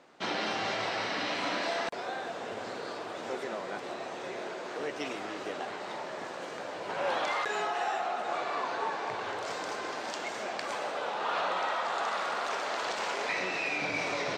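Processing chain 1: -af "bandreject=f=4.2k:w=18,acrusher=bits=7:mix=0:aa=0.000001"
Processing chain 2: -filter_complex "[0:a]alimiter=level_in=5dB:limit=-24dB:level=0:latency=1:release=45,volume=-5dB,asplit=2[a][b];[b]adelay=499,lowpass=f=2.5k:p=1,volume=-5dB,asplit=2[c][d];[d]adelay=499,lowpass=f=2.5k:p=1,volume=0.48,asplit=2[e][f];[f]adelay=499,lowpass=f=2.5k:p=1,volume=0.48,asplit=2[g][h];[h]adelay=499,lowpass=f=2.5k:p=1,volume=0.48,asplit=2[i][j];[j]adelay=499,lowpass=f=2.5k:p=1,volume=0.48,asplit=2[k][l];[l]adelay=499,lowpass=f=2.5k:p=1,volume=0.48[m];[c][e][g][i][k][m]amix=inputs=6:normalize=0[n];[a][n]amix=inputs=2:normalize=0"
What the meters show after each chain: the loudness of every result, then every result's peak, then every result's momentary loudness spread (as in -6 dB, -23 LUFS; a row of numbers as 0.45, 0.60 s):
-33.5, -36.5 LUFS; -19.0, -24.5 dBFS; 8, 2 LU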